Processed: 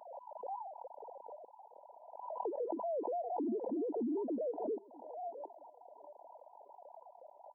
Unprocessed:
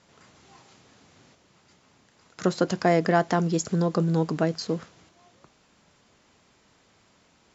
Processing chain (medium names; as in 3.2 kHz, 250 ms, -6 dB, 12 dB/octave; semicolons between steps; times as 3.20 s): formants replaced by sine waves; compression 3:1, threshold -51 dBFS, peak gain reduction 25 dB; peak limiter -47 dBFS, peak gain reduction 12.5 dB; on a send: thinning echo 638 ms, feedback 65%, high-pass 690 Hz, level -18.5 dB; on the sum: FFT band-pass 210–1000 Hz; swell ahead of each attack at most 47 dB/s; trim +15.5 dB